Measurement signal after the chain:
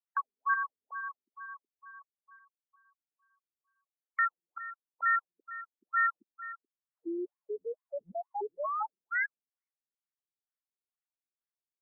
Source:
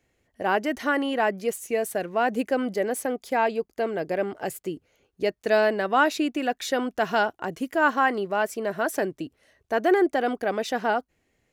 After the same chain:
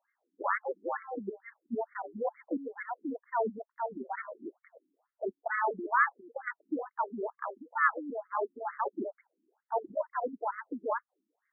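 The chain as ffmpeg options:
-af "aemphasis=mode=production:type=75fm,aeval=exprs='val(0)*sin(2*PI*230*n/s)':c=same,afftfilt=real='re*between(b*sr/1024,250*pow(1600/250,0.5+0.5*sin(2*PI*2.2*pts/sr))/1.41,250*pow(1600/250,0.5+0.5*sin(2*PI*2.2*pts/sr))*1.41)':imag='im*between(b*sr/1024,250*pow(1600/250,0.5+0.5*sin(2*PI*2.2*pts/sr))/1.41,250*pow(1600/250,0.5+0.5*sin(2*PI*2.2*pts/sr))*1.41)':win_size=1024:overlap=0.75"

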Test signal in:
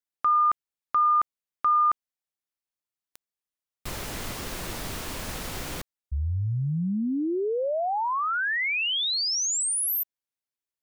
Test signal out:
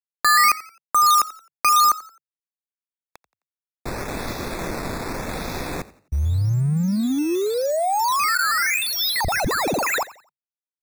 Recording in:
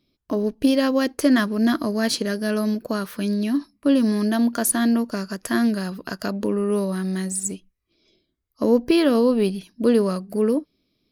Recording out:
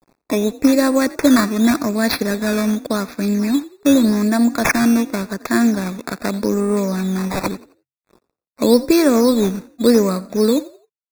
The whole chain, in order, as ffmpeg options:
-filter_complex "[0:a]adynamicequalizer=threshold=0.0224:dfrequency=410:dqfactor=2.4:tfrequency=410:tqfactor=2.4:attack=5:release=100:ratio=0.375:range=2:mode=cutabove:tftype=bell,acrossover=split=160|940[a][b][c];[b]acompressor=mode=upward:threshold=-24dB:ratio=2.5:attack=0.3:release=620:knee=2.83:detection=peak[d];[a][d][c]amix=inputs=3:normalize=0,acrusher=samples=10:mix=1:aa=0.000001:lfo=1:lforange=10:lforate=0.86,aeval=exprs='sgn(val(0))*max(abs(val(0))-0.00596,0)':c=same,asuperstop=centerf=3000:order=12:qfactor=4.1,asplit=2[e][f];[f]asplit=3[g][h][i];[g]adelay=87,afreqshift=44,volume=-19dB[j];[h]adelay=174,afreqshift=88,volume=-28.6dB[k];[i]adelay=261,afreqshift=132,volume=-38.3dB[l];[j][k][l]amix=inputs=3:normalize=0[m];[e][m]amix=inputs=2:normalize=0,volume=5.5dB"

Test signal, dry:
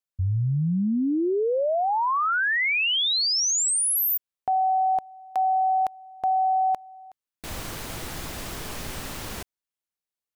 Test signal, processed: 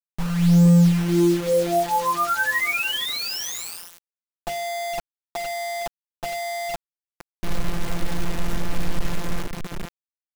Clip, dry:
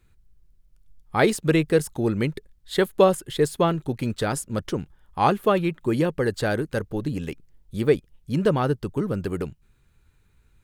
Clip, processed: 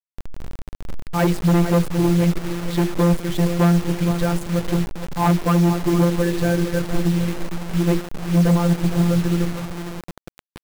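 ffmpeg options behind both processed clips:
-filter_complex "[0:a]equalizer=f=2k:t=o:w=1:g=2.5,asplit=2[a][b];[b]adelay=462,lowpass=f=3.3k:p=1,volume=-12dB,asplit=2[c][d];[d]adelay=462,lowpass=f=3.3k:p=1,volume=0.27,asplit=2[e][f];[f]adelay=462,lowpass=f=3.3k:p=1,volume=0.27[g];[c][e][g]amix=inputs=3:normalize=0[h];[a][h]amix=inputs=2:normalize=0,afftfilt=real='hypot(re,im)*cos(PI*b)':imag='0':win_size=1024:overlap=0.75,aemphasis=mode=reproduction:type=riaa,asoftclip=type=hard:threshold=-15dB,acontrast=45,bandreject=f=50:t=h:w=6,bandreject=f=100:t=h:w=6,bandreject=f=150:t=h:w=6,bandreject=f=200:t=h:w=6,bandreject=f=250:t=h:w=6,bandreject=f=300:t=h:w=6,bandreject=f=350:t=h:w=6,bandreject=f=400:t=h:w=6,bandreject=f=450:t=h:w=6,bandreject=f=500:t=h:w=6,acrusher=bits=4:mix=0:aa=0.000001,volume=-1.5dB"

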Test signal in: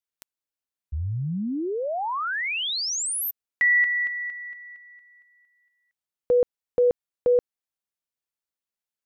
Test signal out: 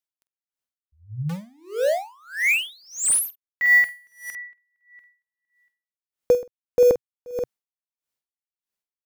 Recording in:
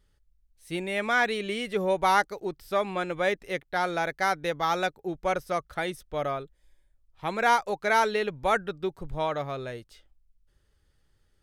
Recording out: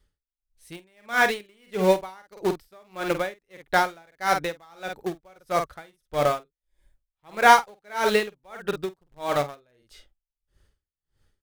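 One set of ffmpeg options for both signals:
-filter_complex "[0:a]adynamicequalizer=threshold=0.002:dfrequency=130:dqfactor=3.9:tfrequency=130:tqfactor=3.9:attack=5:release=100:ratio=0.375:range=2.5:mode=cutabove:tftype=bell,dynaudnorm=f=560:g=5:m=5dB,asplit=2[a][b];[b]acrusher=bits=3:mix=0:aa=0.000001,volume=-9dB[c];[a][c]amix=inputs=2:normalize=0,asplit=2[d][e];[e]adelay=48,volume=-9dB[f];[d][f]amix=inputs=2:normalize=0,aeval=exprs='val(0)*pow(10,-35*(0.5-0.5*cos(2*PI*1.6*n/s))/20)':c=same,volume=1dB"

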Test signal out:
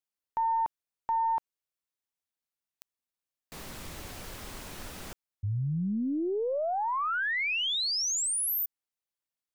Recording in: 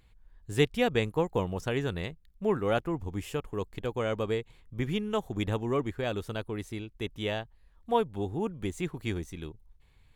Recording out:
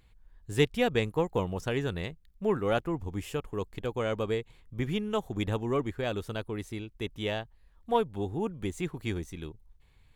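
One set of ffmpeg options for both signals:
-af "aeval=exprs='0.355*(cos(1*acos(clip(val(0)/0.355,-1,1)))-cos(1*PI/2))+0.00631*(cos(6*acos(clip(val(0)/0.355,-1,1)))-cos(6*PI/2))':c=same"

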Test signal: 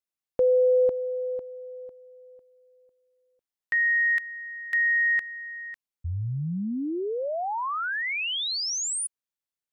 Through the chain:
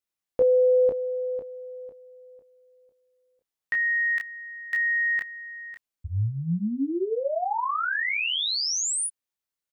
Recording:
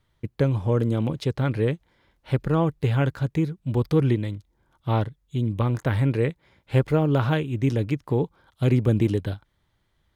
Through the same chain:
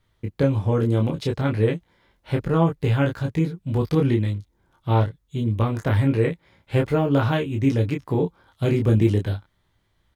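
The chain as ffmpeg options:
-af "aecho=1:1:18|29:0.562|0.596"

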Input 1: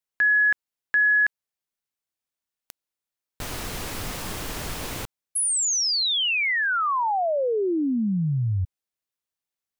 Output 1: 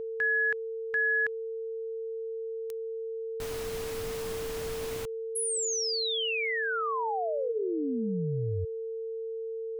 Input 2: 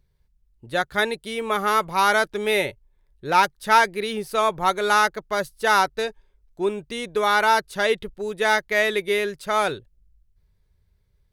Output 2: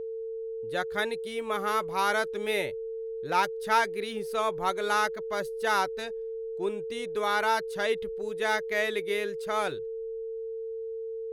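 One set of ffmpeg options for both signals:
-af "aeval=exprs='val(0)+0.0562*sin(2*PI*450*n/s)':c=same,volume=-8dB"

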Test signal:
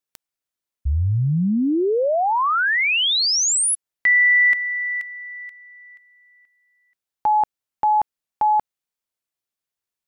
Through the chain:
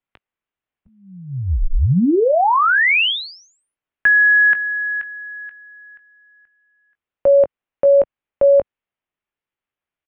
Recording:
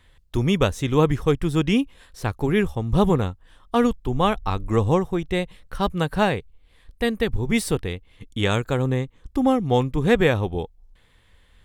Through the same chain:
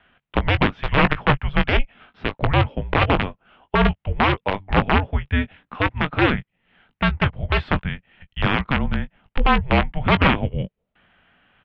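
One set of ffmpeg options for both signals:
-filter_complex "[0:a]aeval=exprs='(mod(3.76*val(0)+1,2)-1)/3.76':c=same,asplit=2[a][b];[b]adelay=19,volume=-11dB[c];[a][c]amix=inputs=2:normalize=0,highpass=f=220:t=q:w=0.5412,highpass=f=220:t=q:w=1.307,lowpass=f=3.3k:t=q:w=0.5176,lowpass=f=3.3k:t=q:w=0.7071,lowpass=f=3.3k:t=q:w=1.932,afreqshift=-290,volume=4.5dB"

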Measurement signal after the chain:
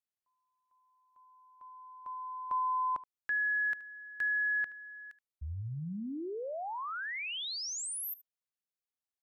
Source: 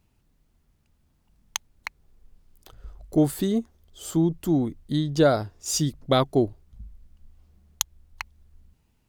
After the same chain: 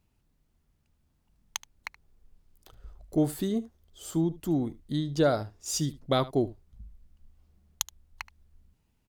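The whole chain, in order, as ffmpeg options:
-af "aecho=1:1:75:0.119,volume=-5dB"

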